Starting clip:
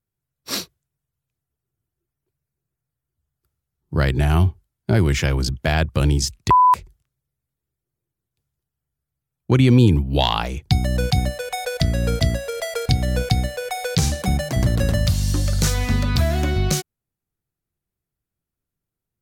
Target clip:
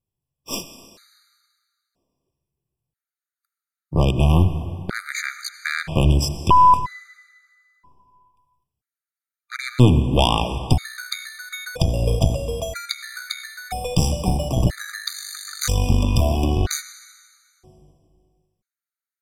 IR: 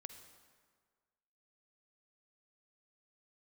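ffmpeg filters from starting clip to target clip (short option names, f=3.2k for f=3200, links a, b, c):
-filter_complex "[0:a]aeval=exprs='0.596*(cos(1*acos(clip(val(0)/0.596,-1,1)))-cos(1*PI/2))+0.133*(cos(4*acos(clip(val(0)/0.596,-1,1)))-cos(4*PI/2))':c=same,asplit=2[a][b];[1:a]atrim=start_sample=2205,asetrate=28665,aresample=44100[c];[b][c]afir=irnorm=-1:irlink=0,volume=7.5dB[d];[a][d]amix=inputs=2:normalize=0,afftfilt=real='re*gt(sin(2*PI*0.51*pts/sr)*(1-2*mod(floor(b*sr/1024/1200),2)),0)':imag='im*gt(sin(2*PI*0.51*pts/sr)*(1-2*mod(floor(b*sr/1024/1200),2)),0)':win_size=1024:overlap=0.75,volume=-8dB"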